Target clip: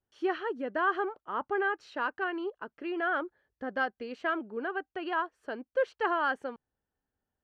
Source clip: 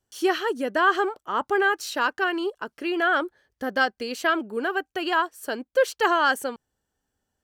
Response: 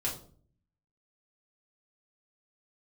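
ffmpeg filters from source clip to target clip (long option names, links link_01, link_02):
-af "lowpass=2200,volume=-7.5dB"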